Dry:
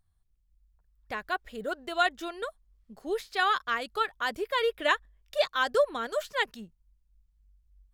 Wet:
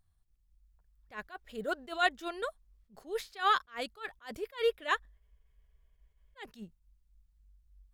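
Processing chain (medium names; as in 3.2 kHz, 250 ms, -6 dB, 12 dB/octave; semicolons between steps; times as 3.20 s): spectral freeze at 5.20 s, 1.18 s; attacks held to a fixed rise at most 230 dB/s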